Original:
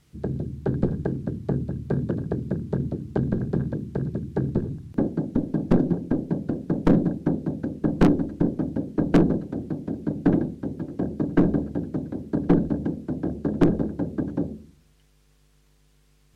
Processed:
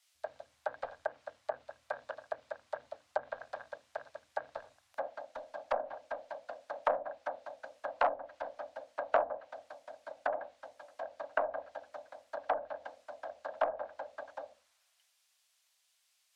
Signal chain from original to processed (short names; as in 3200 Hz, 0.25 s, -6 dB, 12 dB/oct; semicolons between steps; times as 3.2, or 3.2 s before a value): elliptic high-pass 610 Hz, stop band 40 dB; treble ducked by the level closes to 990 Hz, closed at -32.5 dBFS; three-band expander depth 40%; gain +1.5 dB